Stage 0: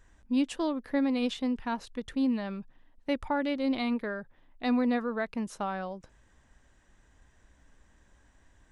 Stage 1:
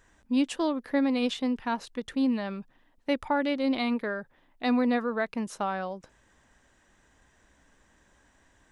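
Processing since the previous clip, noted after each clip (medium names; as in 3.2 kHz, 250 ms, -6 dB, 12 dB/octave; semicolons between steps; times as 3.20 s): bass shelf 110 Hz -11.5 dB; trim +3.5 dB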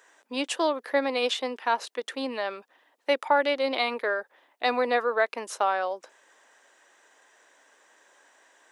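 high-pass 410 Hz 24 dB/octave; trim +6 dB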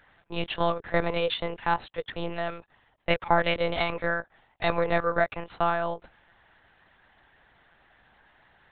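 monotone LPC vocoder at 8 kHz 170 Hz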